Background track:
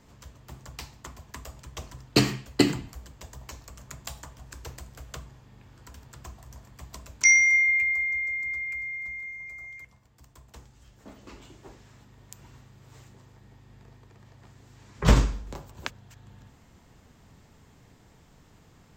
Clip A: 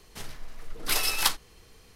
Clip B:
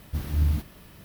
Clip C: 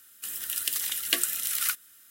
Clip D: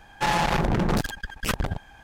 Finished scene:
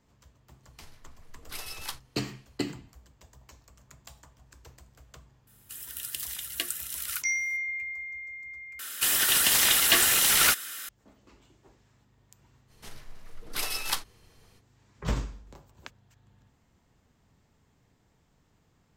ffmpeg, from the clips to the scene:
-filter_complex "[1:a]asplit=2[a][b];[3:a]asplit=2[c][d];[0:a]volume=-11dB[e];[d]asplit=2[f][g];[g]highpass=f=720:p=1,volume=33dB,asoftclip=type=tanh:threshold=-4dB[h];[f][h]amix=inputs=2:normalize=0,lowpass=f=4.2k:p=1,volume=-6dB[i];[e]asplit=2[j][k];[j]atrim=end=8.794[l];[i]atrim=end=2.1,asetpts=PTS-STARTPTS,volume=-4dB[m];[k]atrim=start=10.886[n];[a]atrim=end=1.95,asetpts=PTS-STARTPTS,volume=-13.5dB,afade=t=in:d=0.004:c=hsin,afade=t=out:st=1.946:d=0.004:c=hsin,adelay=630[o];[c]atrim=end=2.1,asetpts=PTS-STARTPTS,volume=-6.5dB,afade=t=in:d=0.004:c=hsin,afade=t=out:st=2.096:d=0.004:c=hsin,adelay=5470[p];[b]atrim=end=1.95,asetpts=PTS-STARTPTS,volume=-5.5dB,afade=t=in:d=0.05,afade=t=out:st=1.9:d=0.05,adelay=12670[q];[l][m]acrossfade=d=0.004:c1=hsin:c2=hsin[r];[r][n]acrossfade=d=0.004:c1=hsin:c2=hsin[s];[s][o][p][q]amix=inputs=4:normalize=0"

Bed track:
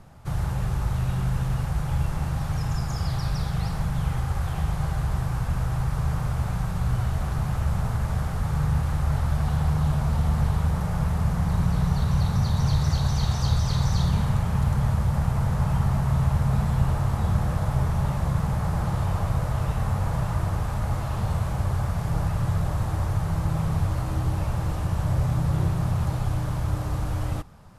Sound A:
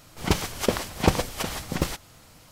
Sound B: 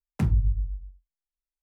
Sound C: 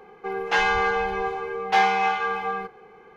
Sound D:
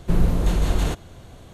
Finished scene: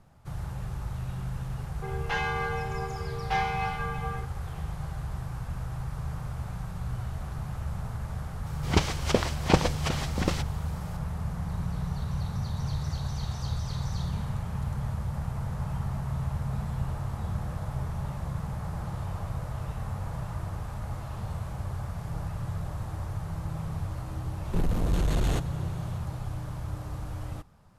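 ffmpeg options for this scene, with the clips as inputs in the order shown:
-filter_complex "[0:a]volume=-9dB[a];[1:a]acrossover=split=7700[b][c];[c]acompressor=threshold=-54dB:ratio=4:attack=1:release=60[d];[b][d]amix=inputs=2:normalize=0[e];[4:a]asoftclip=type=tanh:threshold=-19.5dB[f];[3:a]atrim=end=3.16,asetpts=PTS-STARTPTS,volume=-9dB,afade=t=in:d=0.004:c=hsin,afade=t=out:st=3.156:d=0.004:c=hsin,adelay=1580[g];[e]atrim=end=2.51,asetpts=PTS-STARTPTS,volume=-1dB,afade=t=in:d=0.004:c=hsin,afade=t=out:st=2.506:d=0.004:c=hsin,adelay=8460[h];[f]atrim=end=1.53,asetpts=PTS-STARTPTS,volume=-1.5dB,afade=t=in:d=0.004:c=hsin,afade=t=out:st=1.526:d=0.004:c=hsin,adelay=24450[i];[a][g][h][i]amix=inputs=4:normalize=0"

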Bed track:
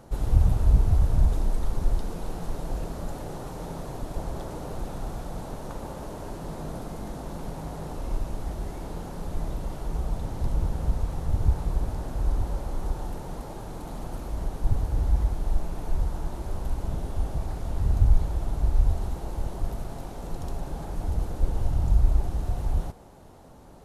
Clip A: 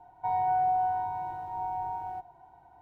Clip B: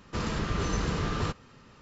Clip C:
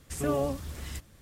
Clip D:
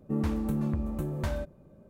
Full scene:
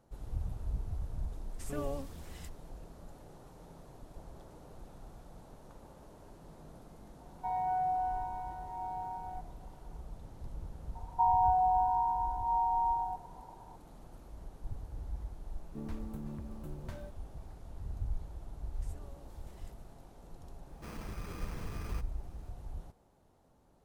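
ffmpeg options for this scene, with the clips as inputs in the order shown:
-filter_complex "[3:a]asplit=2[a][b];[1:a]asplit=2[c][d];[0:a]volume=-17.5dB[e];[d]lowpass=f=940:t=q:w=7[f];[4:a]aeval=exprs='val(0)*gte(abs(val(0)),0.00316)':c=same[g];[b]acompressor=threshold=-42dB:ratio=6:attack=3.2:release=140:knee=1:detection=peak[h];[2:a]acrusher=samples=12:mix=1:aa=0.000001[i];[a]atrim=end=1.21,asetpts=PTS-STARTPTS,volume=-10dB,afade=t=in:d=0.004:c=hsin,afade=t=out:st=1.206:d=0.004:c=hsin,adelay=1490[j];[c]atrim=end=2.81,asetpts=PTS-STARTPTS,volume=-6dB,afade=t=in:d=0.004:c=hsin,afade=t=out:st=2.806:d=0.004:c=hsin,adelay=7200[k];[f]atrim=end=2.81,asetpts=PTS-STARTPTS,volume=-10dB,afade=t=in:d=0.004:c=hsin,afade=t=out:st=2.806:d=0.004:c=hsin,adelay=10950[l];[g]atrim=end=1.89,asetpts=PTS-STARTPTS,volume=-13.5dB,afade=t=in:d=0.004:c=hsin,afade=t=out:st=1.886:d=0.004:c=hsin,adelay=15650[m];[h]atrim=end=1.21,asetpts=PTS-STARTPTS,volume=-13.5dB,afade=t=in:d=0.004:c=hsin,afade=t=out:st=1.206:d=0.004:c=hsin,adelay=18720[n];[i]atrim=end=1.81,asetpts=PTS-STARTPTS,volume=-15dB,afade=t=in:d=0.004:c=hsin,afade=t=out:st=1.806:d=0.004:c=hsin,adelay=20690[o];[e][j][k][l][m][n][o]amix=inputs=7:normalize=0"

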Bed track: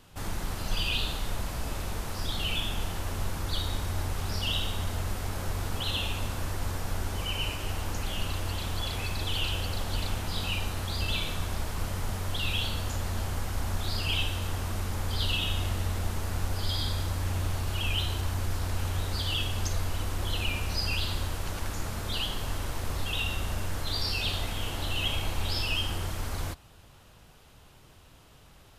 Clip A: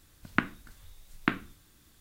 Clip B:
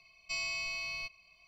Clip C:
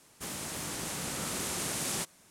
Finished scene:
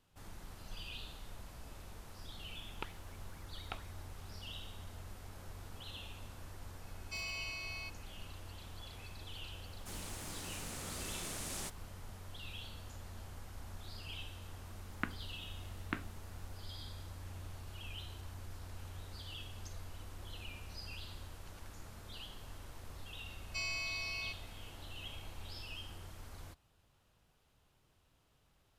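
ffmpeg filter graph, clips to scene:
-filter_complex "[1:a]asplit=2[a][b];[2:a]asplit=2[c][d];[0:a]volume=-17.5dB[e];[a]aeval=exprs='val(0)*sin(2*PI*1600*n/s+1600*0.45/4.2*sin(2*PI*4.2*n/s))':c=same[f];[c]aeval=exprs='0.0335*(abs(mod(val(0)/0.0335+3,4)-2)-1)':c=same[g];[3:a]acrusher=bits=9:dc=4:mix=0:aa=0.000001[h];[f]atrim=end=2,asetpts=PTS-STARTPTS,volume=-15.5dB,afade=t=in:d=0.004:c=hsin,afade=t=out:st=1.996:d=0.004:c=hsin,adelay=2440[i];[g]atrim=end=1.47,asetpts=PTS-STARTPTS,volume=-6dB,afade=t=in:d=0.004:c=hsin,afade=t=out:st=1.466:d=0.004:c=hsin,adelay=300762S[j];[h]atrim=end=2.3,asetpts=PTS-STARTPTS,volume=-9.5dB,afade=t=in:d=0.004:c=hsin,afade=t=out:st=2.296:d=0.004:c=hsin,adelay=9650[k];[b]atrim=end=2,asetpts=PTS-STARTPTS,volume=-12dB,afade=t=in:d=0.004:c=hsin,afade=t=out:st=1.996:d=0.004:c=hsin,adelay=14650[l];[d]atrim=end=1.47,asetpts=PTS-STARTPTS,volume=-3dB,afade=t=in:d=0.004:c=hsin,afade=t=out:st=1.466:d=0.004:c=hsin,adelay=23250[m];[e][i][j][k][l][m]amix=inputs=6:normalize=0"

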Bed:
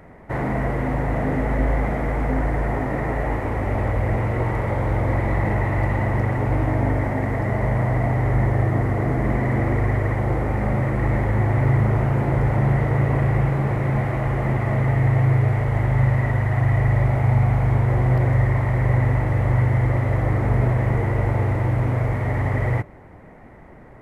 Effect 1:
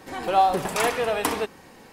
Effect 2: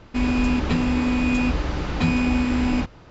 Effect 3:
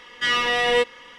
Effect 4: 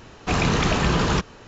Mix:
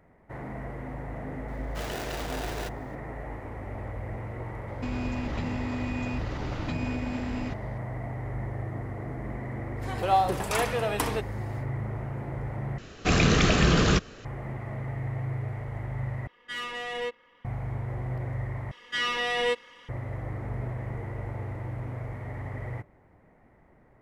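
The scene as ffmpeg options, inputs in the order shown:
-filter_complex "[4:a]asplit=2[a][b];[3:a]asplit=2[c][d];[0:a]volume=-14.5dB[e];[a]aeval=exprs='val(0)*sgn(sin(2*PI*540*n/s))':c=same[f];[2:a]acompressor=threshold=-22dB:ratio=6:attack=3.2:release=140:knee=1:detection=peak[g];[b]equalizer=f=920:w=4:g=-12[h];[c]adynamicsmooth=sensitivity=1.5:basefreq=2.6k[i];[e]asplit=4[j][k][l][m];[j]atrim=end=12.784[n];[h]atrim=end=1.47[o];[k]atrim=start=14.246:end=16.274[p];[i]atrim=end=1.18,asetpts=PTS-STARTPTS,volume=-13dB[q];[l]atrim=start=17.446:end=18.714[r];[d]atrim=end=1.18,asetpts=PTS-STARTPTS,volume=-7dB[s];[m]atrim=start=19.886[t];[f]atrim=end=1.47,asetpts=PTS-STARTPTS,volume=-16dB,afade=t=in:d=0.004:c=hsin,afade=t=out:st=1.466:d=0.004:c=hsin,adelay=1480[u];[g]atrim=end=3.1,asetpts=PTS-STARTPTS,volume=-7dB,afade=t=in:d=0.004:c=hsin,afade=t=out:st=3.096:d=0.004:c=hsin,adelay=4680[v];[1:a]atrim=end=1.92,asetpts=PTS-STARTPTS,volume=-4dB,afade=t=in:d=0.1,afade=t=out:st=1.82:d=0.1,adelay=9750[w];[n][o]acrossfade=d=0.004:c1=hsin:c2=hsin[x];[x][p]acrossfade=d=0.004:c1=hsin:c2=hsin[y];[y][q]acrossfade=d=0.004:c1=hsin:c2=hsin[z];[z][r]acrossfade=d=0.004:c1=hsin:c2=hsin[aa];[aa][s]acrossfade=d=0.004:c1=hsin:c2=hsin[ab];[ab][t]acrossfade=d=0.004:c1=hsin:c2=hsin[ac];[ac][u][v][w]amix=inputs=4:normalize=0"

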